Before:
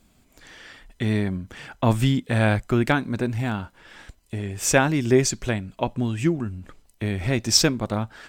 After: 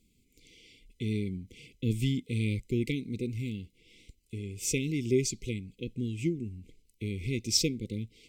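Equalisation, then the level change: brick-wall FIR band-stop 510–2000 Hz; -8.5 dB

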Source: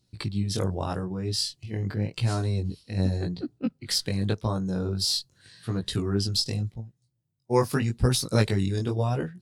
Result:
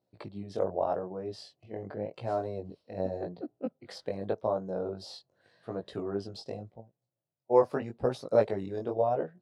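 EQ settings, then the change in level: band-pass filter 620 Hz, Q 3.2; +7.5 dB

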